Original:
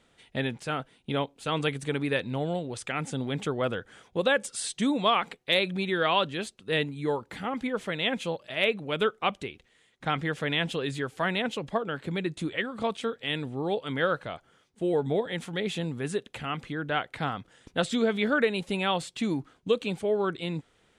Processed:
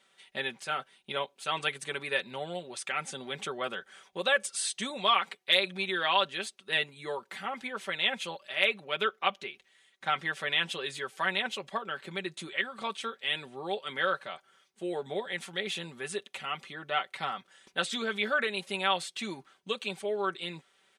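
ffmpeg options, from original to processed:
-filter_complex "[0:a]asettb=1/sr,asplit=3[s0][s1][s2];[s0]atrim=end=8.844[s3];[s1]atrim=start=8.84:end=9.49,asetpts=PTS-STARTPTS,afade=t=in:d=0.004:c=qsin,afade=t=out:st=0.646:d=0.004:c=qsin,equalizer=f=8600:t=o:w=0.41:g=-13[s4];[s2]atrim=start=9.486[s5];[s3][s4]acrossfade=d=0.004:c1=hsin:c2=qsin[s6];[s6][s5]acrossfade=d=0.004:c1=qsin:c2=hsin,asettb=1/sr,asplit=3[s7][s8][s9];[s7]atrim=end=16.074[s10];[s8]atrim=start=16.07:end=17.38,asetpts=PTS-STARTPTS,afade=t=in:d=0.004:c=qsin,afade=t=out:st=1.306:d=0.004:c=qsin,bandreject=f=1600:w=9.5[s11];[s9]atrim=start=17.376[s12];[s10][s11]acrossfade=d=0.004:c1=hsin:c2=qsin[s13];[s13][s12]acrossfade=d=0.004:c1=qsin:c2=hsin,highpass=f=1100:p=1,bandreject=f=7300:w=21,aecho=1:1:5.2:0.67"

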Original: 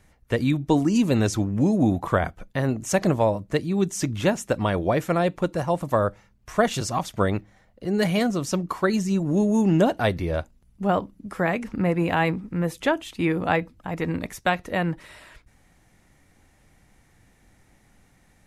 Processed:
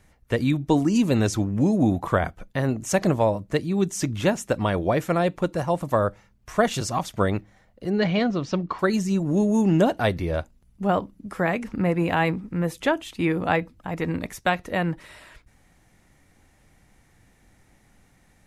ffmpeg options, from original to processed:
-filter_complex "[0:a]asettb=1/sr,asplit=3[s0][s1][s2];[s0]atrim=end=7.904[s3];[s1]atrim=start=7.9:end=8.79,asetpts=PTS-STARTPTS,afade=t=in:d=0.004:c=qsin,afade=t=out:st=0.886:d=0.004:c=qsin,lowpass=f=4700:w=0.5412,lowpass=f=4700:w=1.3066[s4];[s2]atrim=start=8.786[s5];[s3][s4]acrossfade=d=0.004:c1=hsin:c2=qsin[s6];[s6][s5]acrossfade=d=0.004:c1=qsin:c2=hsin"

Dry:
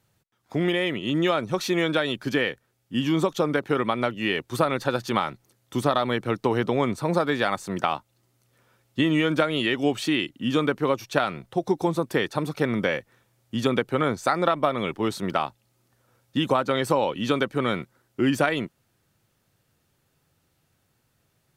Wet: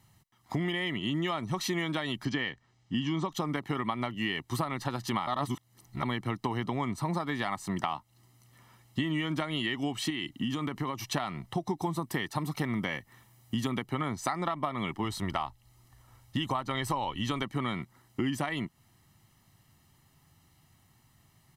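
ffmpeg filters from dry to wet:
-filter_complex "[0:a]asettb=1/sr,asplit=3[s0][s1][s2];[s0]atrim=end=2.254[s3];[s1]atrim=start=2.25:end=3.32,asetpts=PTS-STARTPTS,afade=t=in:d=0.004:c=qsin,afade=t=out:st=1.066:d=0.004:c=qsin,lowpass=f=6600:w=0.5412,lowpass=f=6600:w=1.3066[s4];[s2]atrim=start=3.316[s5];[s3][s4]acrossfade=d=0.004:c1=hsin:c2=qsin[s6];[s6][s5]acrossfade=d=0.004:c1=qsin:c2=hsin,asettb=1/sr,asplit=3[s7][s8][s9];[s7]atrim=end=10.104[s10];[s8]atrim=start=10.1:end=10.99,asetpts=PTS-STARTPTS,afade=t=in:d=0.004:c=qsin,afade=t=out:st=0.886:d=0.004:c=qsin,acompressor=threshold=0.0501:ratio=4:attack=3.2:release=140:knee=1:detection=peak[s11];[s9]atrim=start=10.986[s12];[s10][s11]acrossfade=d=0.004:c1=hsin:c2=qsin[s13];[s13][s12]acrossfade=d=0.004:c1=qsin:c2=hsin,asettb=1/sr,asplit=3[s14][s15][s16];[s14]atrim=end=11.824[s17];[s15]atrim=start=11.82:end=13.86,asetpts=PTS-STARTPTS,afade=t=in:d=0.004:c=qsin,afade=t=out:st=2.036:d=0.004:c=qsin,highshelf=f=12000:g=8.5[s18];[s16]atrim=start=13.856[s19];[s17][s18]acrossfade=d=0.004:c1=hsin:c2=qsin[s20];[s20][s19]acrossfade=d=0.004:c1=qsin:c2=hsin,asplit=3[s21][s22][s23];[s21]afade=t=out:st=15.03:d=0.02[s24];[s22]asubboost=boost=7.5:cutoff=62,afade=t=in:st=15.03:d=0.02,afade=t=out:st=17.42:d=0.02[s25];[s23]afade=t=in:st=17.42:d=0.02[s26];[s24][s25][s26]amix=inputs=3:normalize=0,asplit=3[s27][s28][s29];[s27]atrim=end=5.272[s30];[s28]atrim=start=5.268:end=6.032,asetpts=PTS-STARTPTS,areverse[s31];[s29]atrim=start=6.028[s32];[s30][s31]acrossfade=d=0.004:c1=hsin:c2=hsin[s33];[s33][s32]acrossfade=d=0.004:c1=hsin:c2=hsin,aecho=1:1:1:0.7,acompressor=threshold=0.0224:ratio=4,volume=1.41"

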